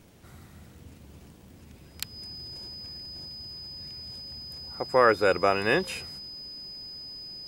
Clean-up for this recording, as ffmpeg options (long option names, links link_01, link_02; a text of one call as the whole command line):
ffmpeg -i in.wav -af "adeclick=threshold=4,bandreject=frequency=5000:width=30" out.wav